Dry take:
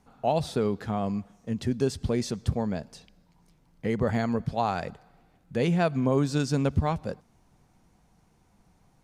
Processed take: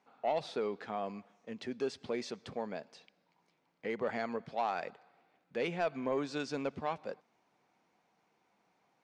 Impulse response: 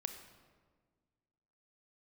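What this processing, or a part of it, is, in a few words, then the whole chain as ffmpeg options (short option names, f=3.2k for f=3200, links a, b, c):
intercom: -af "highpass=380,lowpass=4.5k,equalizer=f=2.3k:t=o:w=0.38:g=4,asoftclip=type=tanh:threshold=-18.5dB,volume=-4.5dB"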